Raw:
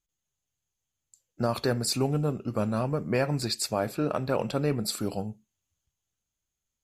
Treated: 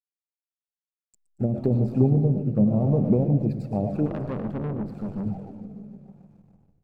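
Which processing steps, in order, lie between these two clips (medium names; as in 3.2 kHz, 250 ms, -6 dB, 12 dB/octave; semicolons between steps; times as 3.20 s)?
low-pass that closes with the level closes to 400 Hz, closed at -22 dBFS; 1.72–3.01 s: doubling 15 ms -8 dB; multi-head delay 148 ms, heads first and second, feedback 73%, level -19 dB; on a send at -7.5 dB: reverberation RT60 0.40 s, pre-delay 65 ms; on the sum: touch-sensitive flanger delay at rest 6.9 ms, full sweep at -24.5 dBFS; hysteresis with a dead band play -50.5 dBFS; graphic EQ with 31 bands 100 Hz +5 dB, 200 Hz +8 dB, 800 Hz +9 dB, 2.5 kHz +8 dB; rotary cabinet horn 0.9 Hz; peaking EQ 2.5 kHz -11.5 dB 2.6 oct; 4.06–5.26 s: valve stage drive 32 dB, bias 0.7; modulated delay 119 ms, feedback 60%, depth 202 cents, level -14.5 dB; trim +6.5 dB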